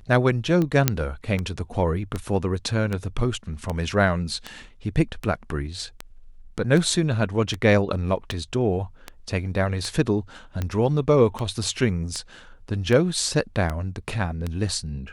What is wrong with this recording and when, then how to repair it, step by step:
scratch tick 78 rpm −14 dBFS
0:00.88: click −1 dBFS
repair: click removal

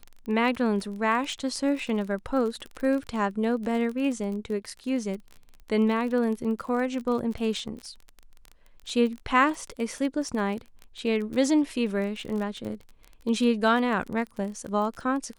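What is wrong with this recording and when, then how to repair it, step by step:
surface crackle 26 per second −32 dBFS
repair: click removal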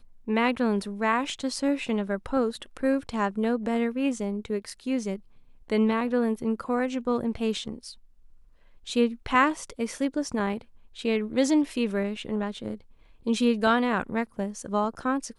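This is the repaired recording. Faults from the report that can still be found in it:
none of them is left

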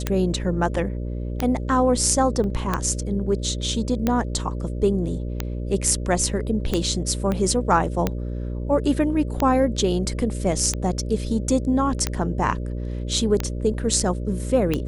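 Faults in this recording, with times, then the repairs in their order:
mains buzz 60 Hz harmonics 10 −28 dBFS
scratch tick 45 rpm −8 dBFS
0:02.44: drop-out 2.4 ms
0:07.32: click −13 dBFS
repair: click removal
hum removal 60 Hz, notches 10
repair the gap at 0:02.44, 2.4 ms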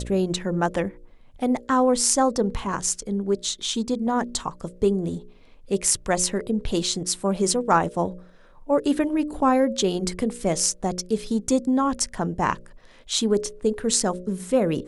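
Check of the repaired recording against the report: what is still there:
0:07.32: click

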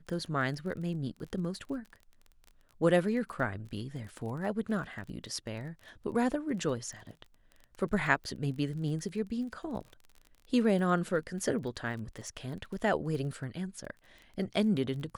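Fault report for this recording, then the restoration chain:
surface crackle 25 per second −40 dBFS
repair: click removal

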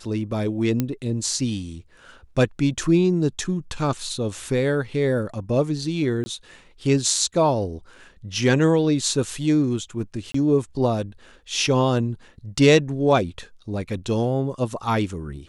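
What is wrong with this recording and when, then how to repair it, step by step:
0:00.80: click −9 dBFS
0:06.24–0:06.26: drop-out 20 ms
0:10.32–0:10.34: drop-out 24 ms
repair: click removal
repair the gap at 0:06.24, 20 ms
repair the gap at 0:10.32, 24 ms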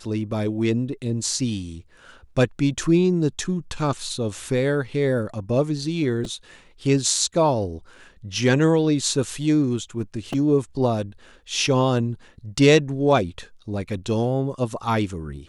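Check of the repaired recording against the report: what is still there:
none of them is left

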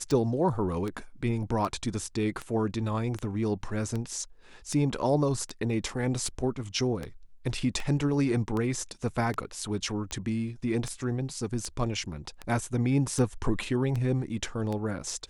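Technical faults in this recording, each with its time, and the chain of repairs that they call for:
scratch tick 78 rpm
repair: click removal

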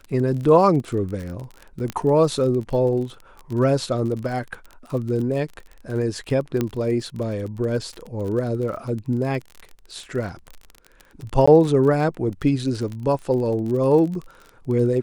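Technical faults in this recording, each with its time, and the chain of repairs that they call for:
surface crackle 32 per second −29 dBFS
0:01.90: click −13 dBFS
0:06.61: click −10 dBFS
0:11.46–0:11.47: drop-out 15 ms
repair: click removal
repair the gap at 0:11.46, 15 ms

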